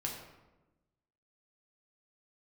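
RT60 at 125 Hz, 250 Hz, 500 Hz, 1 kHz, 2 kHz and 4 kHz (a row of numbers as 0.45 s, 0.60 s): 1.4 s, 1.4 s, 1.2 s, 1.0 s, 0.85 s, 0.65 s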